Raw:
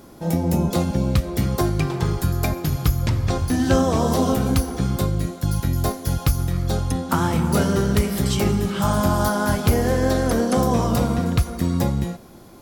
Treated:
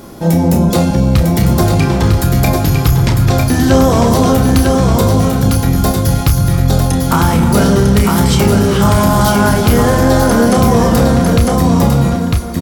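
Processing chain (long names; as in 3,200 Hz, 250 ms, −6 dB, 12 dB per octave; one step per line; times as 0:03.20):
double-tracking delay 30 ms −7 dB
single-tap delay 951 ms −5 dB
in parallel at +1.5 dB: brickwall limiter −14 dBFS, peak gain reduction 9.5 dB
on the sum: soft clipping −4 dBFS, distortion −23 dB
level +4 dB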